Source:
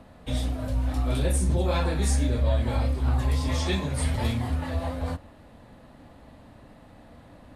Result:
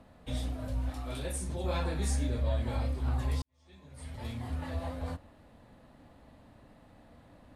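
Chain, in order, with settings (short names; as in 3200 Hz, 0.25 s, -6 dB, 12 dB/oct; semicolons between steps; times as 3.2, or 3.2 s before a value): 0.9–1.64 low shelf 390 Hz -7 dB; 3.42–4.63 fade in quadratic; gain -7 dB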